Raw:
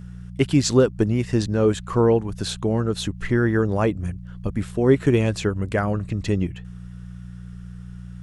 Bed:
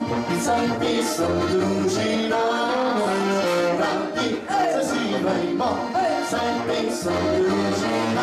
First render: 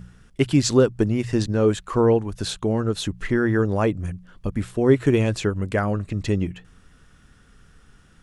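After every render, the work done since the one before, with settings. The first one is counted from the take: de-hum 60 Hz, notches 3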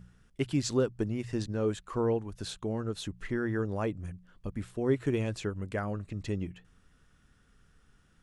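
gain -11 dB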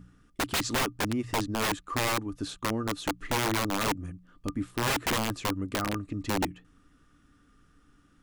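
small resonant body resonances 290/1200 Hz, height 16 dB, ringing for 85 ms; wrapped overs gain 22 dB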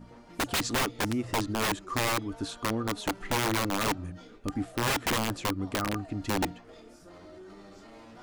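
add bed -28 dB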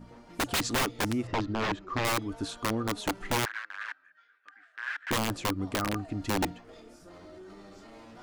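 1.27–2.05 air absorption 180 m; 3.45–5.11 ladder band-pass 1700 Hz, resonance 80%

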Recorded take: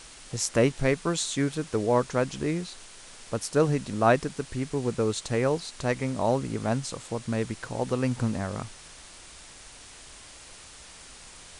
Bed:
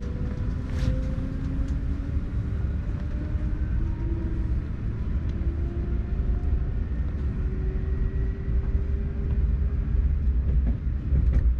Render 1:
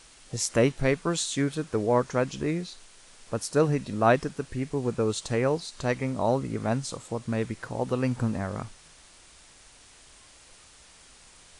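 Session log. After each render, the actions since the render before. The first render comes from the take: noise print and reduce 6 dB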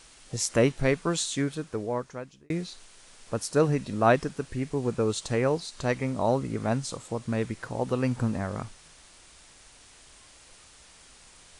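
1.22–2.5 fade out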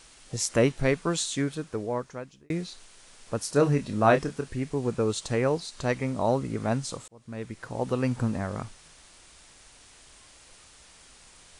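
3.43–4.49 doubler 28 ms -8 dB; 7.08–7.85 fade in linear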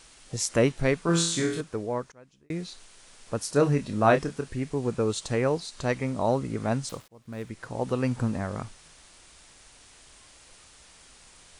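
1.06–1.61 flutter echo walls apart 4.1 m, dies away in 0.54 s; 2.12–2.7 fade in, from -22.5 dB; 6.89–7.5 switching dead time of 0.071 ms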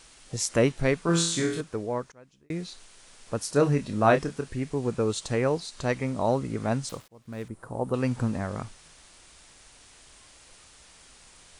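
7.48–7.94 band shelf 3400 Hz -13.5 dB 2.3 oct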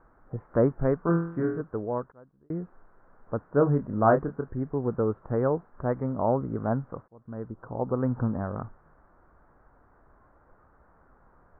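steep low-pass 1500 Hz 48 dB/oct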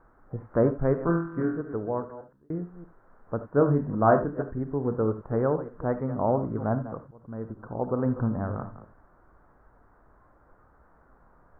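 reverse delay 0.158 s, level -13 dB; non-linear reverb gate 0.1 s rising, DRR 10.5 dB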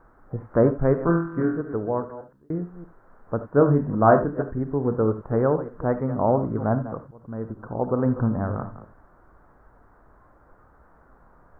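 gain +4 dB

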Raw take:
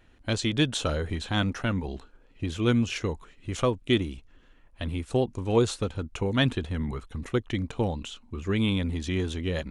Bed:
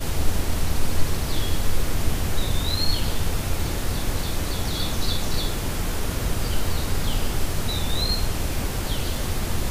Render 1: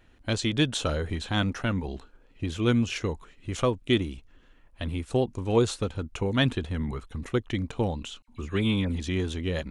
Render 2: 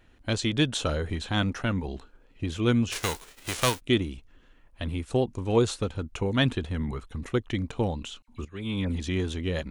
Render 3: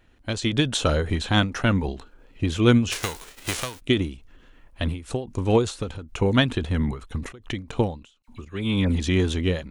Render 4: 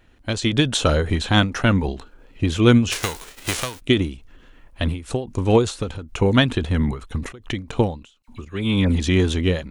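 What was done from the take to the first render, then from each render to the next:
8.22–9 dispersion lows, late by 60 ms, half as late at 2100 Hz
2.91–3.79 spectral whitening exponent 0.3; 8.45–8.87 fade in quadratic, from -14 dB
AGC gain up to 7 dB; ending taper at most 140 dB/s
gain +3.5 dB; limiter -3 dBFS, peak gain reduction 1 dB

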